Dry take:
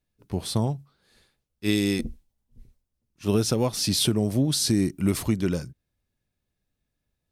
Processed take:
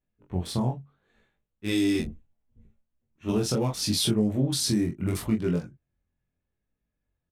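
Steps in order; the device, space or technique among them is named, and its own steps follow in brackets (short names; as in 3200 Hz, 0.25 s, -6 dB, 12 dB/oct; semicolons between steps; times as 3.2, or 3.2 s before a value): Wiener smoothing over 9 samples; double-tracked vocal (doubler 23 ms -5 dB; chorus 0.73 Hz, delay 18 ms, depth 6.2 ms); 1.94–3.32 doubler 13 ms -3.5 dB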